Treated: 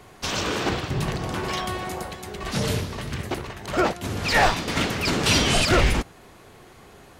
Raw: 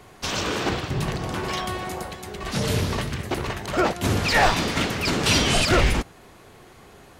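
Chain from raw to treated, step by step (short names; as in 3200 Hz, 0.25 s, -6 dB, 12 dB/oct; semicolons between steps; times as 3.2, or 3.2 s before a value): 2.63–4.68 tremolo 1.7 Hz, depth 58%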